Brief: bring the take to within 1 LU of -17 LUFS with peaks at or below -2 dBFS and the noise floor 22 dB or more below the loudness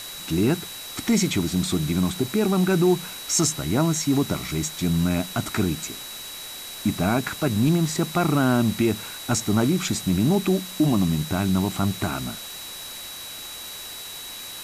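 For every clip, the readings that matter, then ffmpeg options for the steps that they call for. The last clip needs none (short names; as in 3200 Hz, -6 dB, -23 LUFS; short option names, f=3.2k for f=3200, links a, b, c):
steady tone 3900 Hz; tone level -38 dBFS; noise floor -37 dBFS; noise floor target -46 dBFS; loudness -24.0 LUFS; peak -10.0 dBFS; loudness target -17.0 LUFS
-> -af "bandreject=f=3.9k:w=30"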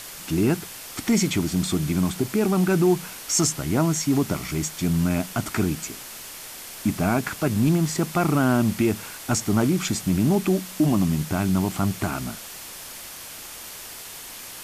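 steady tone none; noise floor -39 dBFS; noise floor target -46 dBFS
-> -af "afftdn=nr=7:nf=-39"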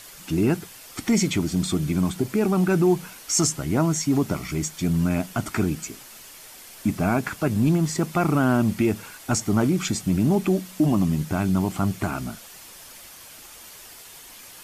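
noise floor -45 dBFS; noise floor target -46 dBFS
-> -af "afftdn=nr=6:nf=-45"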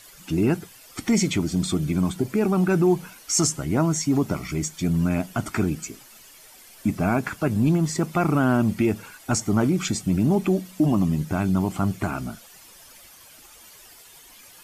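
noise floor -49 dBFS; loudness -23.5 LUFS; peak -11.0 dBFS; loudness target -17.0 LUFS
-> -af "volume=6.5dB"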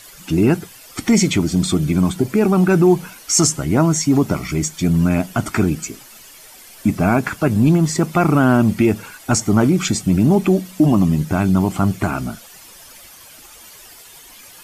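loudness -17.0 LUFS; peak -4.5 dBFS; noise floor -42 dBFS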